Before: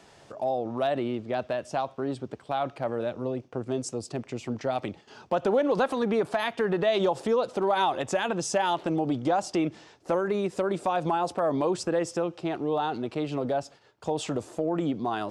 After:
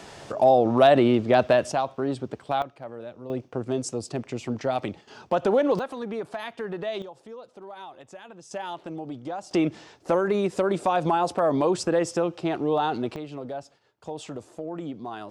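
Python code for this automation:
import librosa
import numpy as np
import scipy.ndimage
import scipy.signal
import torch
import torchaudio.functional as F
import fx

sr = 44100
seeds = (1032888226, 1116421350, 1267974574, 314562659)

y = fx.gain(x, sr, db=fx.steps((0.0, 10.5), (1.72, 3.5), (2.62, -8.5), (3.3, 2.5), (5.79, -6.5), (7.02, -17.0), (8.51, -8.5), (9.51, 3.5), (13.16, -6.5)))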